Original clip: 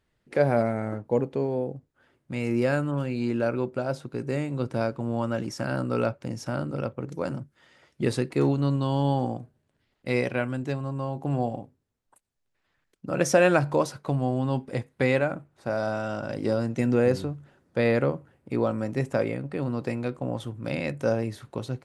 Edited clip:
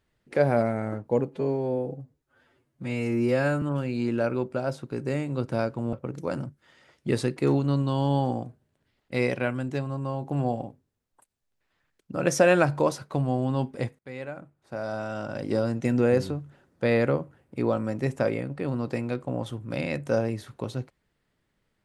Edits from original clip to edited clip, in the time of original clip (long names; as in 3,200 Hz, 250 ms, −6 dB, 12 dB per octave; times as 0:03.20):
0:01.28–0:02.84: time-stretch 1.5×
0:05.15–0:06.87: remove
0:14.93–0:16.47: fade in, from −22.5 dB